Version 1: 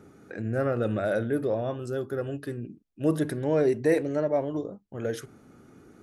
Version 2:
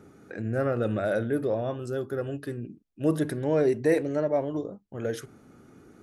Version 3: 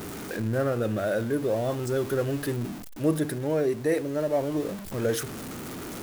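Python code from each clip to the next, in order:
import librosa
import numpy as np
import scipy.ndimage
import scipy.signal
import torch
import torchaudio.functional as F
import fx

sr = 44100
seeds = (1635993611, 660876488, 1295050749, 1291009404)

y1 = x
y2 = y1 + 0.5 * 10.0 ** (-36.5 / 20.0) * np.sign(y1)
y2 = fx.high_shelf(y2, sr, hz=7800.0, db=8.0)
y2 = fx.rider(y2, sr, range_db=3, speed_s=0.5)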